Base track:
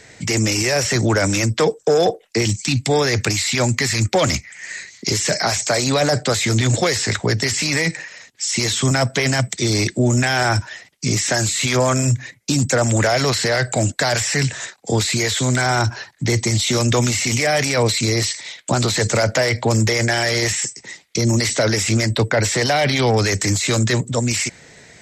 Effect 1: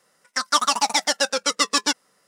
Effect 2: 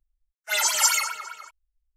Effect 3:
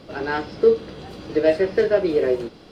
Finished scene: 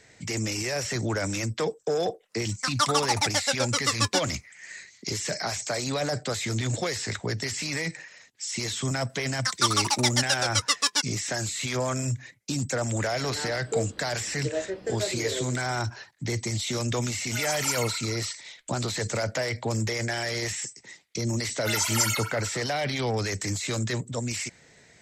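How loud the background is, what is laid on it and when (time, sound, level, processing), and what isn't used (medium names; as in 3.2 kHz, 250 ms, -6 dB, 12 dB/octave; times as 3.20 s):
base track -11 dB
2.27 s: add 1 -5 dB, fades 0.10 s
9.09 s: add 1 -7.5 dB + tilt shelf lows -5.5 dB, about 830 Hz
13.09 s: add 3 -13 dB
16.84 s: add 2 -9 dB
21.16 s: add 2 -5 dB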